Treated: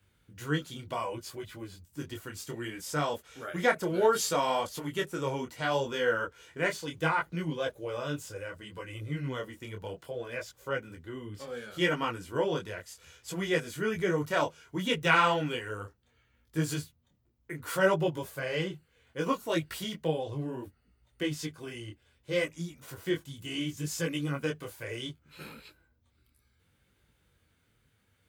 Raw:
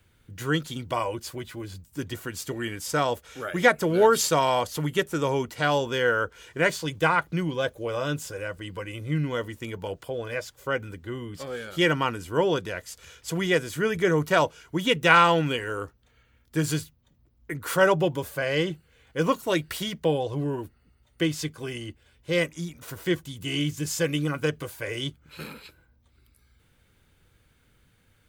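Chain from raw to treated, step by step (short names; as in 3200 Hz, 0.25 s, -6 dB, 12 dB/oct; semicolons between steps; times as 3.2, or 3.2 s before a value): HPF 49 Hz; detuned doubles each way 23 cents; gain -2.5 dB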